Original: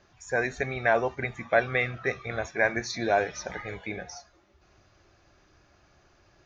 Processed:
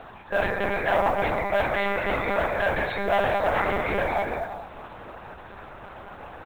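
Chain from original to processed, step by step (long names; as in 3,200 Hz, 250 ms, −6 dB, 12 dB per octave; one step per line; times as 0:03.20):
reversed playback
downward compressor 6 to 1, threshold −36 dBFS, peak gain reduction 18 dB
reversed playback
double-tracking delay 27 ms −6.5 dB
reverb whose tail is shaped and stops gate 460 ms flat, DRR 4.5 dB
in parallel at −7 dB: sine wavefolder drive 14 dB, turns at −21 dBFS
on the sum: one-pitch LPC vocoder at 8 kHz 200 Hz
parametric band 850 Hz +12.5 dB 1.6 octaves
noise that follows the level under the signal 34 dB
level −1 dB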